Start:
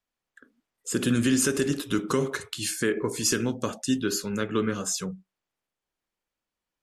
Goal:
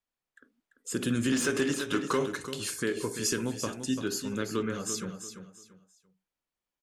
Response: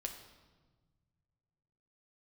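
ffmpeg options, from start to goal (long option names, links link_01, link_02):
-filter_complex "[0:a]aecho=1:1:341|682|1023:0.355|0.0993|0.0278,asettb=1/sr,asplit=3[link_01][link_02][link_03];[link_01]atrim=end=1.324[link_04];[link_02]atrim=start=1.32:end=2.26,asetpts=PTS-STARTPTS,afade=type=in:duration=0.004:curve=qsin,afade=type=out:start_time=0.936:duration=0.004:curve=qsin,asplit=2[link_05][link_06];[link_06]highpass=frequency=720:poles=1,volume=14dB,asoftclip=type=tanh:threshold=-10dB[link_07];[link_05][link_07]amix=inputs=2:normalize=0,lowpass=frequency=2800:poles=1,volume=-6dB[link_08];[link_03]atrim=start=2.256[link_09];[link_04][link_08]acrossfade=duration=0.004:curve1=hsin:curve2=qsin[link_10];[link_10][link_09]acrossfade=duration=0.004:curve1=qsin:curve2=hsin,volume=-5dB"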